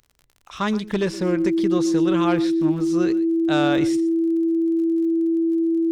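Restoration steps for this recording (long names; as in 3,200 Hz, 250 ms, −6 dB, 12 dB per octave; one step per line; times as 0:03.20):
click removal
notch filter 330 Hz, Q 30
echo removal 121 ms −17.5 dB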